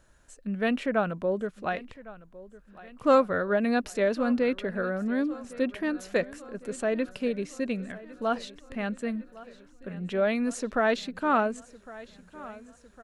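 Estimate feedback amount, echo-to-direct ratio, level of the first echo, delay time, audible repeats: 57%, -17.5 dB, -19.0 dB, 1107 ms, 4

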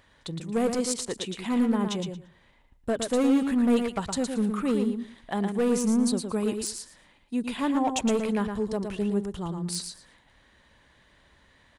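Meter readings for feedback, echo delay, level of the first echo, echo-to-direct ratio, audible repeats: 17%, 114 ms, -6.0 dB, -6.0 dB, 2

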